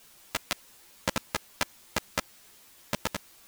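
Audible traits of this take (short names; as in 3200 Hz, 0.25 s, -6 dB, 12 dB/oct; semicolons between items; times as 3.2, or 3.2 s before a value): a buzz of ramps at a fixed pitch in blocks of 128 samples; random-step tremolo; a quantiser's noise floor 10-bit, dither triangular; a shimmering, thickened sound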